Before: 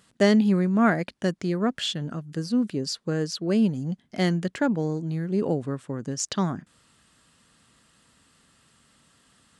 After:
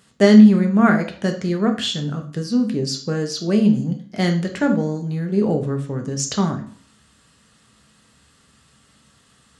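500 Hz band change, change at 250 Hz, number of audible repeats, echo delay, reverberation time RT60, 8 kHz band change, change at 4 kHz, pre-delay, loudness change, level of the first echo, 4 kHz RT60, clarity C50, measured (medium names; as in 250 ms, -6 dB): +5.5 dB, +8.0 dB, no echo, no echo, 0.50 s, +5.5 dB, +5.0 dB, 3 ms, +7.0 dB, no echo, 0.40 s, 10.0 dB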